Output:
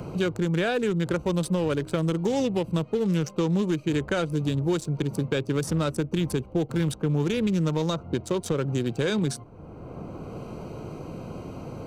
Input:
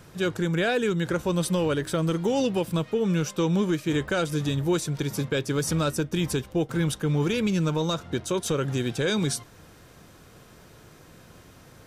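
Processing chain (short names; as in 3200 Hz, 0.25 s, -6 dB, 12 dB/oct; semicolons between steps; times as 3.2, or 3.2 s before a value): Wiener smoothing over 25 samples; three-band squash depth 70%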